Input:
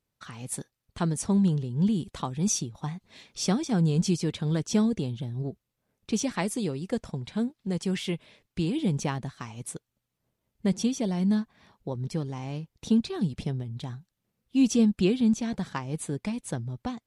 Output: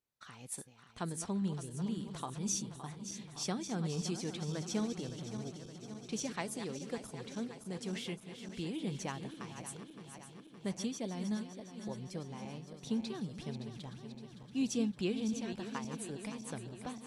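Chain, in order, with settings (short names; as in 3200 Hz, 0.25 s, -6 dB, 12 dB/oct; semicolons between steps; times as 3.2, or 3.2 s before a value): regenerating reverse delay 0.283 s, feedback 79%, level -10 dB; low shelf 260 Hz -8 dB; gain -8 dB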